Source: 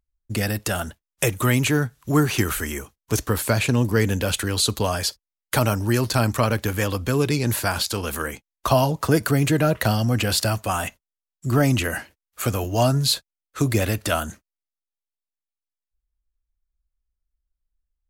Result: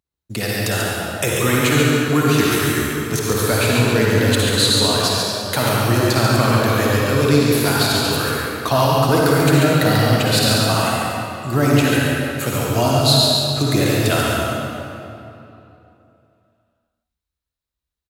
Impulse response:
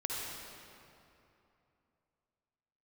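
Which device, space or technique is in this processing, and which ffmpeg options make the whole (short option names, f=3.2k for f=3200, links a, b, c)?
PA in a hall: -filter_complex "[0:a]highpass=110,equalizer=f=3.9k:t=o:w=0.25:g=7,aecho=1:1:140:0.562[a];[1:a]atrim=start_sample=2205[b];[a][b]afir=irnorm=-1:irlink=0,volume=1.5dB"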